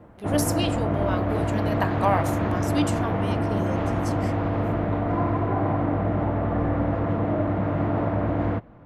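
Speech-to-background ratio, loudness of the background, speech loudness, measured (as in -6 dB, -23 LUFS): -5.0 dB, -25.0 LUFS, -30.0 LUFS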